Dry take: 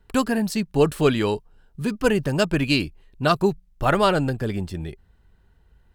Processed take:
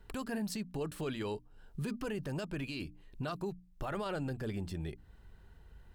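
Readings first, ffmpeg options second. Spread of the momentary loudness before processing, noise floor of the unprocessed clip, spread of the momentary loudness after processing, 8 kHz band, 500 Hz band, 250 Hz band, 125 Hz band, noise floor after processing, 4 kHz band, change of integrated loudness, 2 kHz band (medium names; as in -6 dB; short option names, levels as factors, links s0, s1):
11 LU, -60 dBFS, 8 LU, -13.5 dB, -18.0 dB, -15.5 dB, -14.0 dB, -60 dBFS, -18.0 dB, -17.0 dB, -17.5 dB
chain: -af "bandreject=f=60:t=h:w=6,bandreject=f=120:t=h:w=6,bandreject=f=180:t=h:w=6,bandreject=f=240:t=h:w=6,bandreject=f=300:t=h:w=6,acompressor=threshold=0.00891:ratio=2.5,alimiter=level_in=2.11:limit=0.0631:level=0:latency=1:release=12,volume=0.473,volume=1.19"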